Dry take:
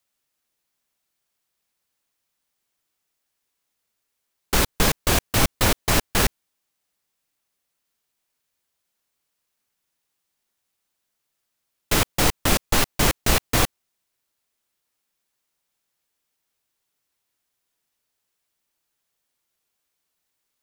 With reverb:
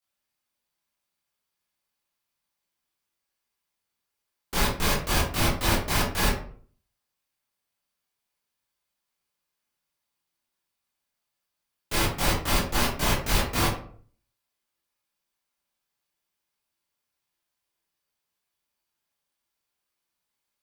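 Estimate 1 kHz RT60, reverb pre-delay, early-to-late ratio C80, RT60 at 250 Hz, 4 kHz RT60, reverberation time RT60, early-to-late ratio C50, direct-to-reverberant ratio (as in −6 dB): 0.45 s, 16 ms, 9.0 dB, 0.60 s, 0.30 s, 0.50 s, 4.0 dB, −9.5 dB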